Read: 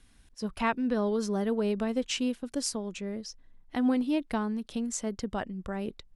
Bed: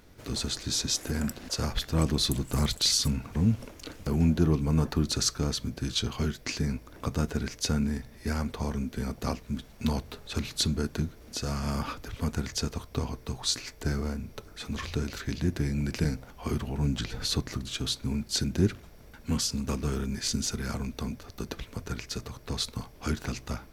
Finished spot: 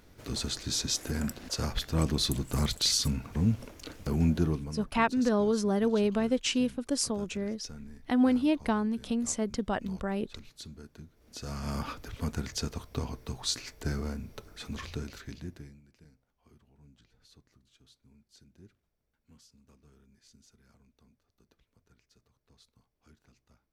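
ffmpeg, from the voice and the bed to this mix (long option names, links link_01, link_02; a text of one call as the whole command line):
ffmpeg -i stem1.wav -i stem2.wav -filter_complex "[0:a]adelay=4350,volume=2dB[link_01];[1:a]volume=13.5dB,afade=type=out:start_time=4.35:duration=0.43:silence=0.149624,afade=type=in:start_time=11.1:duration=0.67:silence=0.16788,afade=type=out:start_time=14.56:duration=1.25:silence=0.0398107[link_02];[link_01][link_02]amix=inputs=2:normalize=0" out.wav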